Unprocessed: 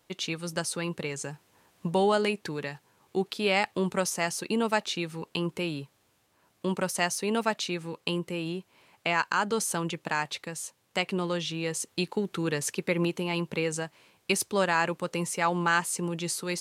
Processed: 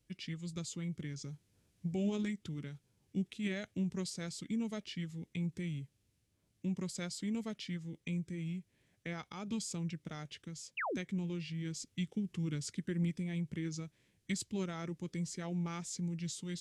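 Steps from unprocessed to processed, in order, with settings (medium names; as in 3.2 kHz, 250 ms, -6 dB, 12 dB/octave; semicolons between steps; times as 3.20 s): formant shift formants -4 st; amplifier tone stack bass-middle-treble 10-0-1; painted sound fall, 10.77–10.97 s, 210–3000 Hz -46 dBFS; trim +9.5 dB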